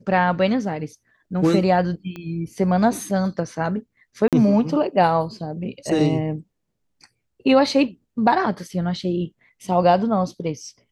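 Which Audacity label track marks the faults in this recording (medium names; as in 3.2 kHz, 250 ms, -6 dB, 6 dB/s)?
2.160000	2.160000	pop -21 dBFS
4.280000	4.330000	dropout 47 ms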